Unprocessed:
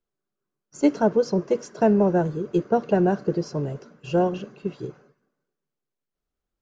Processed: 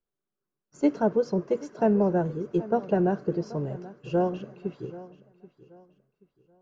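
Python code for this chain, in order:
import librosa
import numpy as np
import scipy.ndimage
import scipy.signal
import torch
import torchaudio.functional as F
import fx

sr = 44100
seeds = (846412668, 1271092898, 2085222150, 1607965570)

p1 = fx.high_shelf(x, sr, hz=3300.0, db=-8.5)
p2 = p1 + fx.echo_feedback(p1, sr, ms=781, feedback_pct=30, wet_db=-18, dry=0)
y = p2 * 10.0 ** (-3.5 / 20.0)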